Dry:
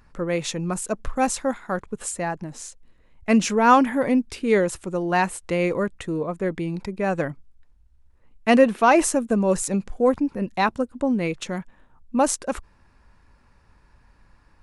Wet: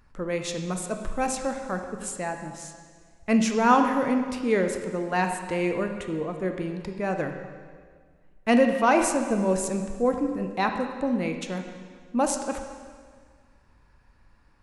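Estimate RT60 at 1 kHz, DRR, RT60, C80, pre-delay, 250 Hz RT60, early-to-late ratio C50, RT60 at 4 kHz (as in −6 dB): 1.7 s, 5.0 dB, 1.8 s, 8.0 dB, 7 ms, 1.9 s, 6.5 dB, 1.7 s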